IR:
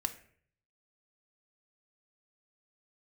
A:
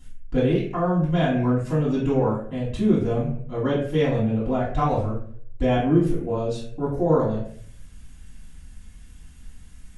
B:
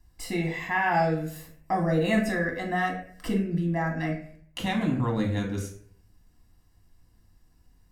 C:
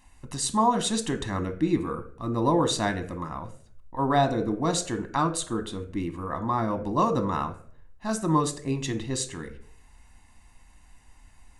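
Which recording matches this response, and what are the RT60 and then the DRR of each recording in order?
C; 0.55, 0.55, 0.55 seconds; −9.5, 0.0, 8.0 decibels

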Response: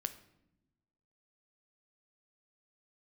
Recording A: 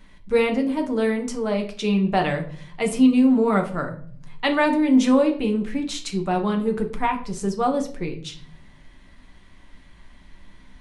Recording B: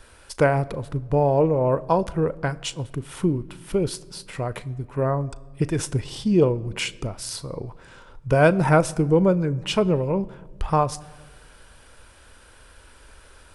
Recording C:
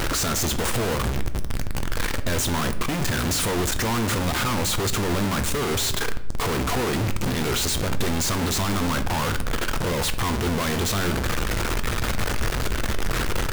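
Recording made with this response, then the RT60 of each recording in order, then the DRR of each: C; 0.50 s, 1.5 s, non-exponential decay; 2.5, 16.5, 9.5 decibels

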